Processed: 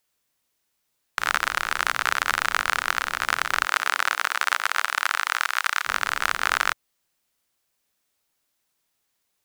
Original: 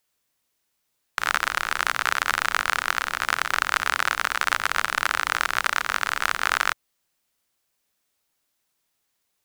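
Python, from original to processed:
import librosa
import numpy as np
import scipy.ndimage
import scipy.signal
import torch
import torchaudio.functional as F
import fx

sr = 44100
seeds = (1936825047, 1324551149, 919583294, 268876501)

y = fx.highpass(x, sr, hz=fx.line((3.65, 330.0), (5.85, 970.0)), slope=12, at=(3.65, 5.85), fade=0.02)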